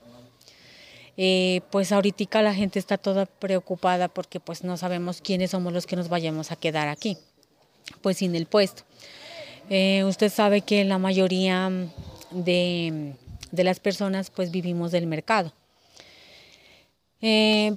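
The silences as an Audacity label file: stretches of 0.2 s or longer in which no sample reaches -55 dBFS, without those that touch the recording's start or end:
16.870000	17.210000	silence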